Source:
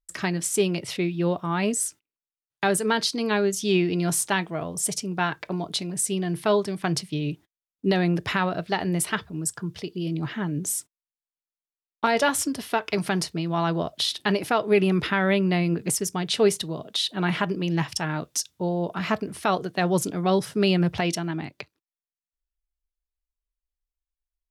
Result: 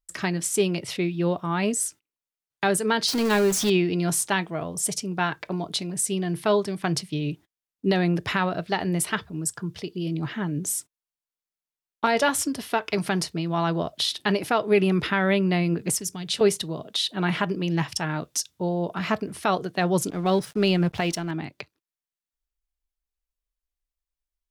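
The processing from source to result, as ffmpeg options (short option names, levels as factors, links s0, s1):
-filter_complex "[0:a]asettb=1/sr,asplit=3[s0][s1][s2];[s0]atrim=end=3.084[s3];[s1]atrim=start=3.08:end=3.7,asetpts=PTS-STARTPTS,afade=t=in:d=0.004:c=qsin,afade=t=out:st=0.616:d=0.004:c=qsin,aeval=exprs='val(0)+0.5*0.0562*sgn(val(0))':c=same[s4];[s2]atrim=start=3.696[s5];[s3][s4]acrossfade=d=0.004:c1=hsin:c2=qsin[s6];[s6][s5]acrossfade=d=0.004:c1=qsin:c2=hsin,asettb=1/sr,asplit=3[s7][s8][s9];[s7]atrim=end=15.924[s10];[s8]atrim=start=15.92:end=16.41,asetpts=PTS-STARTPTS,afade=t=in:d=0.004:c=qsin,afade=t=out:st=0.486:d=0.004:c=qsin,acrossover=split=160|3000[s11][s12][s13];[s12]acompressor=threshold=0.0158:ratio=6:attack=3.2:release=140:knee=2.83:detection=peak[s14];[s11][s14][s13]amix=inputs=3:normalize=0[s15];[s9]atrim=start=16.406[s16];[s10][s15]acrossfade=d=0.004:c1=hsin:c2=qsin[s17];[s17][s16]acrossfade=d=0.004:c1=qsin:c2=hsin,asettb=1/sr,asplit=3[s18][s19][s20];[s18]atrim=end=20.104[s21];[s19]atrim=start=20.1:end=21.31,asetpts=PTS-STARTPTS,afade=t=in:d=0.004:c=qsin,afade=t=out:st=1.206:d=0.004:c=qsin,aeval=exprs='sgn(val(0))*max(abs(val(0))-0.00562,0)':c=same[s22];[s20]atrim=start=21.306[s23];[s21][s22]acrossfade=d=0.004:c1=hsin:c2=qsin[s24];[s24][s23]acrossfade=d=0.004:c1=qsin:c2=hsin"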